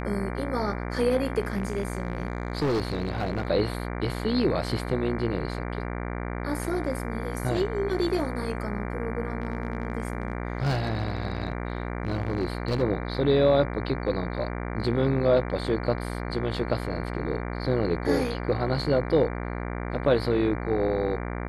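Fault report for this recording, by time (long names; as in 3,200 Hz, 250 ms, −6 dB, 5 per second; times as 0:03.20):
mains buzz 60 Hz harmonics 39 −32 dBFS
0:01.43–0:03.47: clipping −22 dBFS
0:09.42–0:12.83: clipping −21 dBFS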